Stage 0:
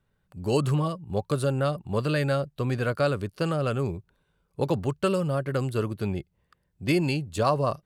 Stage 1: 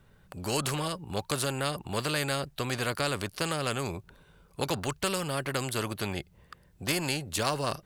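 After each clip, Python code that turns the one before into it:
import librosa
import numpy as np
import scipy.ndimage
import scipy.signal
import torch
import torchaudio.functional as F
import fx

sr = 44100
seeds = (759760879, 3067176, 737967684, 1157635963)

y = fx.spectral_comp(x, sr, ratio=2.0)
y = y * 10.0 ** (-2.0 / 20.0)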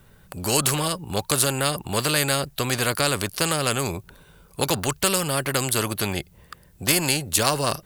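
y = fx.high_shelf(x, sr, hz=7400.0, db=11.0)
y = y * 10.0 ** (6.5 / 20.0)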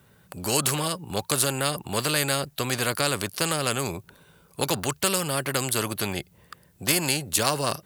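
y = scipy.signal.sosfilt(scipy.signal.butter(2, 91.0, 'highpass', fs=sr, output='sos'), x)
y = y * 10.0 ** (-2.5 / 20.0)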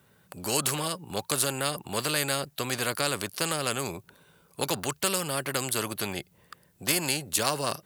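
y = fx.low_shelf(x, sr, hz=92.0, db=-8.5)
y = y * 10.0 ** (-3.0 / 20.0)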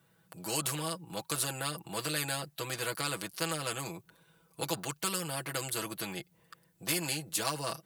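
y = x + 0.78 * np.pad(x, (int(6.1 * sr / 1000.0), 0))[:len(x)]
y = y * 10.0 ** (-8.0 / 20.0)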